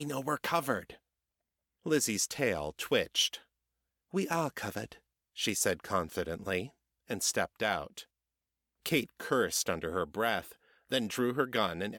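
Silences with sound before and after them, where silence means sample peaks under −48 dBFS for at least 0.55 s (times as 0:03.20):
0:00.96–0:01.86
0:03.39–0:04.13
0:08.03–0:08.86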